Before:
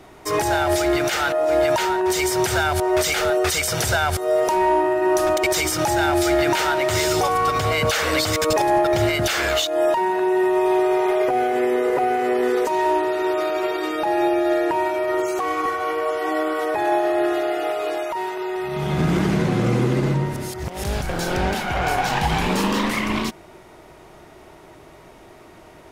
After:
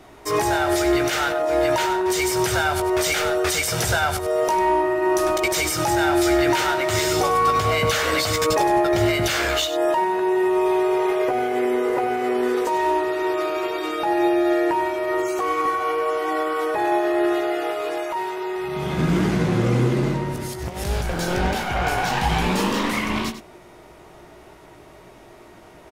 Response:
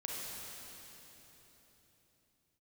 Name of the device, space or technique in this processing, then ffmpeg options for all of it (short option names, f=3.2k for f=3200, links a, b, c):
slapback doubling: -filter_complex "[0:a]asplit=3[a][b][c];[b]adelay=17,volume=-7.5dB[d];[c]adelay=98,volume=-11dB[e];[a][d][e]amix=inputs=3:normalize=0,volume=-1.5dB"